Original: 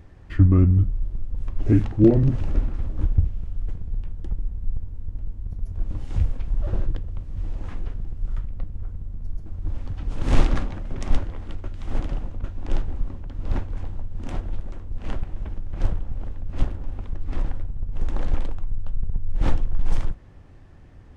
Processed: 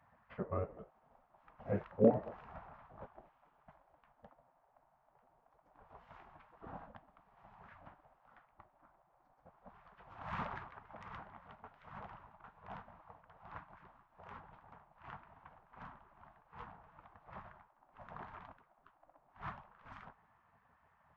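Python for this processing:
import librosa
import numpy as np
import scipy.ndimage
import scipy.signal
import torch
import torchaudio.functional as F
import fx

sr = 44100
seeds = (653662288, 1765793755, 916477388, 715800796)

y = fx.ladder_bandpass(x, sr, hz=500.0, resonance_pct=40)
y = fx.spec_gate(y, sr, threshold_db=-15, keep='weak')
y = y * 10.0 ** (13.0 / 20.0)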